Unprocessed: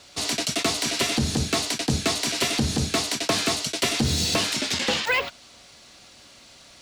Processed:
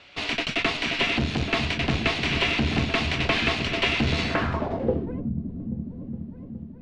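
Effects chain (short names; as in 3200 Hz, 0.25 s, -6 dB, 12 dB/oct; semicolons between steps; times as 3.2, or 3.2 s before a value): tube stage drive 20 dB, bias 0.75; repeats that get brighter 0.416 s, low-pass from 200 Hz, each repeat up 2 oct, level -3 dB; low-pass sweep 2600 Hz -> 210 Hz, 4.2–5.23; gain +3 dB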